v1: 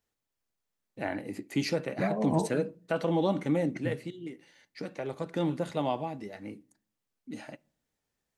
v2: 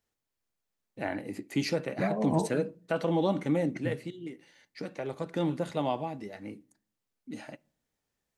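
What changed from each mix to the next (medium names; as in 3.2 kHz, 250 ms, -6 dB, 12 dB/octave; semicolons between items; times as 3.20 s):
no change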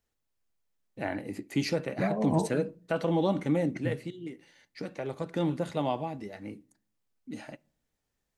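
master: add bass shelf 67 Hz +9.5 dB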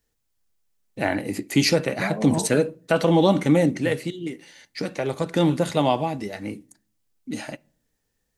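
first voice +9.0 dB; master: add treble shelf 3.4 kHz +8 dB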